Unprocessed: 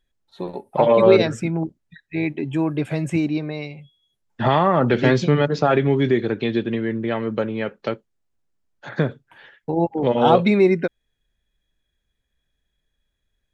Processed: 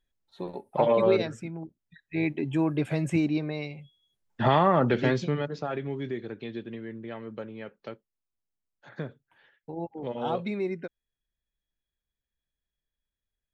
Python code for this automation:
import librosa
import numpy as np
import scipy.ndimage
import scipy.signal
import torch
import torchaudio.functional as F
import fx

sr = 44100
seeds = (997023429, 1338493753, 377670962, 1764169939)

y = fx.gain(x, sr, db=fx.line((0.85, -6.5), (1.62, -15.0), (2.21, -4.0), (4.73, -4.0), (5.68, -15.0)))